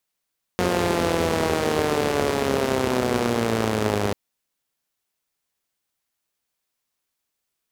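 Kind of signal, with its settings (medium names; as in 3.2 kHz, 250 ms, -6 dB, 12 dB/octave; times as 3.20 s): four-cylinder engine model, changing speed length 3.54 s, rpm 5400, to 3000, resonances 100/230/400 Hz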